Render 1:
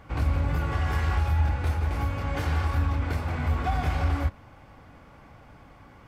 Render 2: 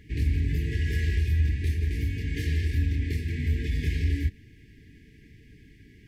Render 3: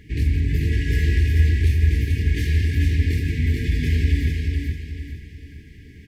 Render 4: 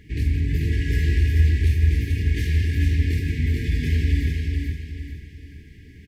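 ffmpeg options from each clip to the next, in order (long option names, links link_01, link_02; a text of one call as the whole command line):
ffmpeg -i in.wav -af "afftfilt=real='re*(1-between(b*sr/4096,460,1600))':imag='im*(1-between(b*sr/4096,460,1600))':win_size=4096:overlap=0.75" out.wav
ffmpeg -i in.wav -af "aecho=1:1:436|872|1308|1744|2180:0.668|0.254|0.0965|0.0367|0.0139,volume=5dB" out.wav
ffmpeg -i in.wav -filter_complex "[0:a]asplit=2[link_01][link_02];[link_02]adelay=50,volume=-12dB[link_03];[link_01][link_03]amix=inputs=2:normalize=0,volume=-2dB" out.wav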